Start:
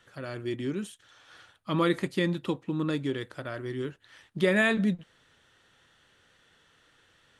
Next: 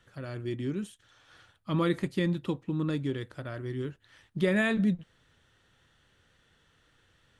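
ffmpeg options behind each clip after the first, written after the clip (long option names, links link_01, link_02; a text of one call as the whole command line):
ffmpeg -i in.wav -af "lowshelf=frequency=170:gain=11.5,volume=-4.5dB" out.wav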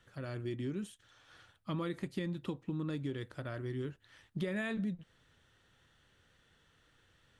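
ffmpeg -i in.wav -af "acompressor=threshold=-31dB:ratio=6,volume=-2.5dB" out.wav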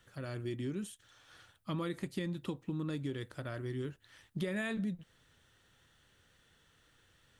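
ffmpeg -i in.wav -af "crystalizer=i=1:c=0" out.wav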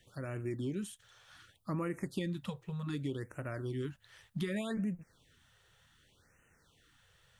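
ffmpeg -i in.wav -af "afftfilt=real='re*(1-between(b*sr/1024,240*pow(4300/240,0.5+0.5*sin(2*PI*0.66*pts/sr))/1.41,240*pow(4300/240,0.5+0.5*sin(2*PI*0.66*pts/sr))*1.41))':imag='im*(1-between(b*sr/1024,240*pow(4300/240,0.5+0.5*sin(2*PI*0.66*pts/sr))/1.41,240*pow(4300/240,0.5+0.5*sin(2*PI*0.66*pts/sr))*1.41))':win_size=1024:overlap=0.75,volume=1dB" out.wav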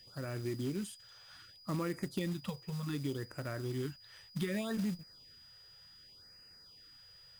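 ffmpeg -i in.wav -af "aeval=exprs='val(0)+0.00158*sin(2*PI*4900*n/s)':channel_layout=same,acrusher=bits=4:mode=log:mix=0:aa=0.000001" out.wav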